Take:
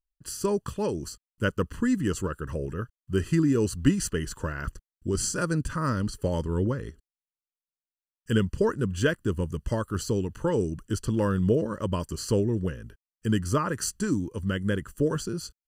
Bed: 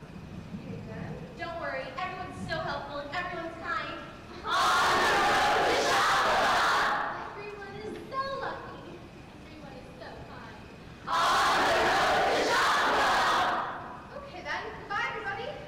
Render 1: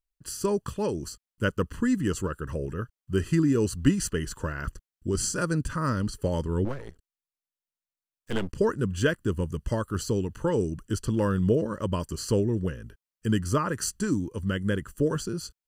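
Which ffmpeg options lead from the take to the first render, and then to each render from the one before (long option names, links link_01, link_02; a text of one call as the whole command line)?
ffmpeg -i in.wav -filter_complex "[0:a]asettb=1/sr,asplit=3[link_01][link_02][link_03];[link_01]atrim=end=6.654[link_04];[link_02]atrim=start=6.65:end=8.55,asetpts=PTS-STARTPTS,afade=type=in:duration=0.004:curve=qsin,afade=type=out:start_time=1.896:duration=0.004:curve=qsin,aeval=exprs='max(val(0),0)':channel_layout=same[link_05];[link_03]atrim=start=8.546[link_06];[link_04][link_05]acrossfade=duration=0.004:curve1=hsin:curve2=qsin[link_07];[link_07][link_06]acrossfade=duration=0.004:curve1=qsin:curve2=hsin" out.wav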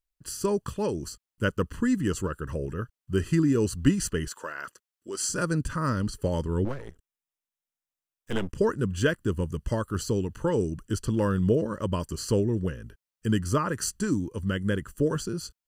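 ffmpeg -i in.wav -filter_complex "[0:a]asettb=1/sr,asplit=3[link_01][link_02][link_03];[link_01]atrim=end=4.284[link_04];[link_02]atrim=start=4.28:end=5.29,asetpts=PTS-STARTPTS,afade=type=in:duration=0.004:curve=qsin,afade=type=out:start_time=1.006:duration=0.004:curve=qsin,highpass=520[link_05];[link_03]atrim=start=5.286[link_06];[link_04][link_05]acrossfade=duration=0.004:curve1=hsin:curve2=qsin[link_07];[link_07][link_06]acrossfade=duration=0.004:curve1=qsin:curve2=hsin,asettb=1/sr,asplit=3[link_08][link_09][link_10];[link_08]atrim=end=6.824[link_11];[link_09]atrim=start=6.82:end=8.57,asetpts=PTS-STARTPTS,afade=type=in:duration=0.004:curve=qsin,afade=type=out:start_time=1.746:duration=0.004:curve=qsin,bandreject=frequency=4400:width=5.2[link_12];[link_10]atrim=start=8.566[link_13];[link_11][link_12]acrossfade=duration=0.004:curve1=hsin:curve2=qsin[link_14];[link_14][link_13]acrossfade=duration=0.004:curve1=qsin:curve2=hsin" out.wav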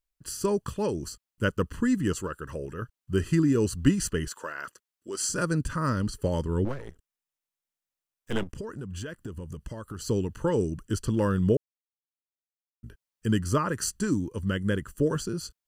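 ffmpeg -i in.wav -filter_complex "[0:a]asettb=1/sr,asplit=3[link_01][link_02][link_03];[link_01]atrim=end=2.134[link_04];[link_02]atrim=start=2.13:end=2.82,asetpts=PTS-STARTPTS,afade=type=in:duration=0.004:curve=qsin,afade=type=out:start_time=0.686:duration=0.004:curve=qsin,lowshelf=frequency=300:gain=-7.5[link_05];[link_03]atrim=start=2.816[link_06];[link_04][link_05]acrossfade=duration=0.004:curve1=hsin:curve2=qsin[link_07];[link_07][link_06]acrossfade=duration=0.004:curve1=qsin:curve2=hsin,asettb=1/sr,asplit=3[link_08][link_09][link_10];[link_08]atrim=end=8.434[link_11];[link_09]atrim=start=8.43:end=10.06,asetpts=PTS-STARTPTS,afade=type=in:duration=0.004:curve=qsin,afade=type=out:start_time=1.626:duration=0.004:curve=qsin,acompressor=threshold=-33dB:ratio=8:attack=3.2:release=140:knee=1:detection=peak[link_12];[link_10]atrim=start=10.056[link_13];[link_11][link_12]acrossfade=duration=0.004:curve1=hsin:curve2=qsin[link_14];[link_14][link_13]acrossfade=duration=0.004:curve1=qsin:curve2=hsin,asplit=3[link_15][link_16][link_17];[link_15]atrim=end=11.57,asetpts=PTS-STARTPTS,afade=type=out:start_time=11.566:duration=0.004:curve=hsin[link_18];[link_16]atrim=start=11.57:end=12.83,asetpts=PTS-STARTPTS,volume=0[link_19];[link_17]atrim=start=12.83,asetpts=PTS-STARTPTS,afade=type=in:duration=0.004:curve=hsin[link_20];[link_18][link_19][link_20]concat=n=3:v=0:a=1" out.wav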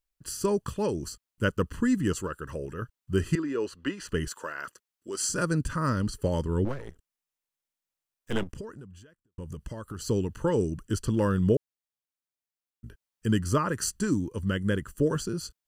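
ffmpeg -i in.wav -filter_complex "[0:a]asettb=1/sr,asplit=3[link_01][link_02][link_03];[link_01]atrim=end=3.354[link_04];[link_02]atrim=start=3.35:end=4.09,asetpts=PTS-STARTPTS,afade=type=in:duration=0.004:curve=qsin,afade=type=out:start_time=0.736:duration=0.004:curve=qsin,acrossover=split=350 4100:gain=0.0708 1 0.141[link_05][link_06][link_07];[link_05][link_06][link_07]amix=inputs=3:normalize=0[link_08];[link_03]atrim=start=4.086[link_09];[link_04][link_08]acrossfade=duration=0.004:curve1=hsin:curve2=qsin[link_10];[link_10][link_09]acrossfade=duration=0.004:curve1=qsin:curve2=hsin,asplit=2[link_11][link_12];[link_11]atrim=end=9.38,asetpts=PTS-STARTPTS,afade=type=out:start_time=8.51:duration=0.87:curve=qua[link_13];[link_12]atrim=start=9.38,asetpts=PTS-STARTPTS,afade=type=in:duration=0.004:curve=hsin[link_14];[link_13][link_14]concat=n=2:v=0:a=1" out.wav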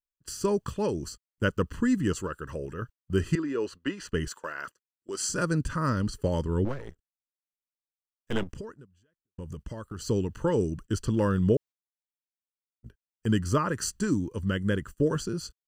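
ffmpeg -i in.wav -af "agate=range=-16dB:threshold=-42dB:ratio=16:detection=peak,equalizer=frequency=11000:width_type=o:width=0.41:gain=-9.5" out.wav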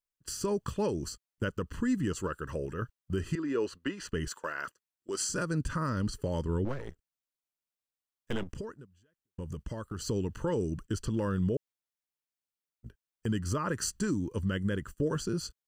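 ffmpeg -i in.wav -af "alimiter=limit=-21.5dB:level=0:latency=1:release=176" out.wav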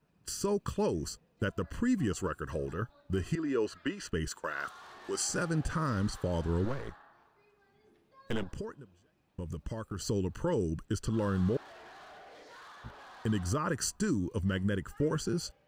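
ffmpeg -i in.wav -i bed.wav -filter_complex "[1:a]volume=-26.5dB[link_01];[0:a][link_01]amix=inputs=2:normalize=0" out.wav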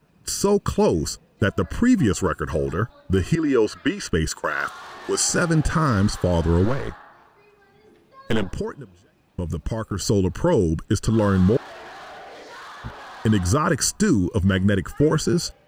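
ffmpeg -i in.wav -af "volume=12dB" out.wav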